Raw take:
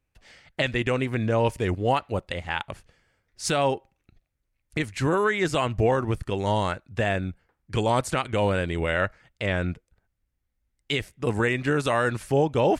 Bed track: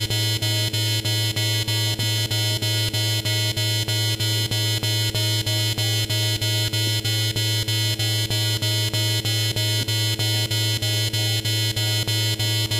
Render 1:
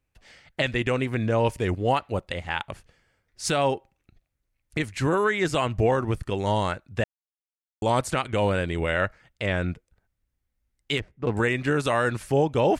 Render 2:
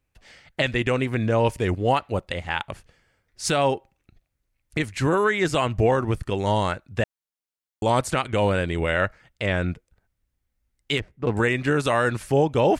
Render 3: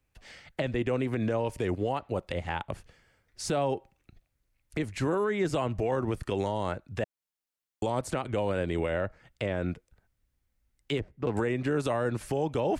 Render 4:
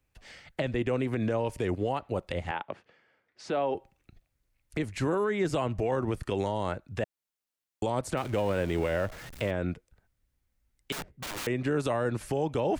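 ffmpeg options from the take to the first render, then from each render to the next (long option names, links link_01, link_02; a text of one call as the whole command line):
ffmpeg -i in.wav -filter_complex "[0:a]asettb=1/sr,asplit=3[link_01][link_02][link_03];[link_01]atrim=end=10.974[link_04];[link_02]atrim=start=10.97:end=11.37,asetpts=PTS-STARTPTS,afade=type=in:duration=0.004:curve=qsin,afade=type=out:start_time=0.396:duration=0.004:curve=qsin,adynamicsmooth=sensitivity=1.5:basefreq=1500[link_05];[link_03]atrim=start=11.366[link_06];[link_04][link_05]acrossfade=duration=0.004:curve1=hsin:curve2=qsin[link_07];[link_07][link_06]acrossfade=duration=0.004:curve1=qsin:curve2=hsin,asplit=3[link_08][link_09][link_10];[link_08]atrim=end=7.04,asetpts=PTS-STARTPTS,afade=type=out:start_time=7.036:duration=0.004:curve=hsin[link_11];[link_09]atrim=start=7.04:end=7.82,asetpts=PTS-STARTPTS,volume=0[link_12];[link_10]atrim=start=7.82,asetpts=PTS-STARTPTS,afade=type=in:duration=0.004:curve=hsin[link_13];[link_11][link_12][link_13]concat=n=3:v=0:a=1" out.wav
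ffmpeg -i in.wav -af "volume=2dB" out.wav
ffmpeg -i in.wav -filter_complex "[0:a]acrossover=split=220|870[link_01][link_02][link_03];[link_01]acompressor=threshold=-33dB:ratio=4[link_04];[link_02]acompressor=threshold=-23dB:ratio=4[link_05];[link_03]acompressor=threshold=-37dB:ratio=4[link_06];[link_04][link_05][link_06]amix=inputs=3:normalize=0,alimiter=limit=-19dB:level=0:latency=1:release=60" out.wav
ffmpeg -i in.wav -filter_complex "[0:a]asettb=1/sr,asplit=3[link_01][link_02][link_03];[link_01]atrim=end=2.514[link_04];[link_02]atrim=start=2.51:end=3.75,asetpts=PTS-STARTPTS,afade=type=in:duration=0.004:curve=qsin,afade=type=out:start_time=1.236:duration=0.004:curve=qsin,highpass=260,lowpass=3100[link_05];[link_03]atrim=start=3.746[link_06];[link_04][link_05]acrossfade=duration=0.004:curve1=hsin:curve2=qsin[link_07];[link_07][link_06]acrossfade=duration=0.004:curve1=qsin:curve2=hsin,asettb=1/sr,asplit=3[link_08][link_09][link_10];[link_08]atrim=end=8.174[link_11];[link_09]atrim=start=8.17:end=9.51,asetpts=PTS-STARTPTS,afade=type=in:duration=0.004:curve=qsin,afade=type=out:start_time=1.336:duration=0.004:curve=qsin,aeval=exprs='val(0)+0.5*0.01*sgn(val(0))':channel_layout=same[link_12];[link_10]atrim=start=9.506[link_13];[link_11][link_12]acrossfade=duration=0.004:curve1=hsin:curve2=qsin[link_14];[link_14][link_13]acrossfade=duration=0.004:curve1=qsin:curve2=hsin,asettb=1/sr,asplit=3[link_15][link_16][link_17];[link_15]atrim=end=10.924[link_18];[link_16]atrim=start=10.92:end=11.47,asetpts=PTS-STARTPTS,afade=type=in:duration=0.004:curve=qsin,afade=type=out:start_time=0.546:duration=0.004:curve=qsin,aeval=exprs='(mod(39.8*val(0)+1,2)-1)/39.8':channel_layout=same[link_19];[link_17]atrim=start=11.466[link_20];[link_18][link_19]acrossfade=duration=0.004:curve1=hsin:curve2=qsin[link_21];[link_21][link_20]acrossfade=duration=0.004:curve1=qsin:curve2=hsin" out.wav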